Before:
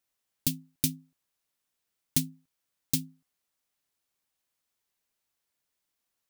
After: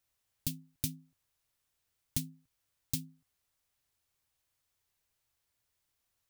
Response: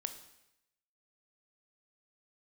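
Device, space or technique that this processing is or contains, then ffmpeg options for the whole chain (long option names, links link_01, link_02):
car stereo with a boomy subwoofer: -af "lowshelf=frequency=140:width_type=q:width=1.5:gain=8.5,alimiter=limit=-17.5dB:level=0:latency=1:release=359,volume=1dB"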